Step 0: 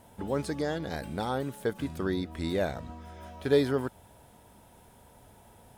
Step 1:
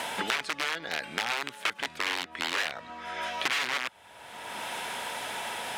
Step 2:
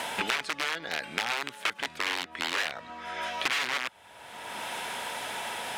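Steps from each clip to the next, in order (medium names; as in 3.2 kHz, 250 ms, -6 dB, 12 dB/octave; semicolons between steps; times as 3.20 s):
integer overflow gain 25 dB; band-pass filter 2.2 kHz, Q 1.1; three bands compressed up and down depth 100%; trim +7.5 dB
rattle on loud lows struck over -41 dBFS, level -16 dBFS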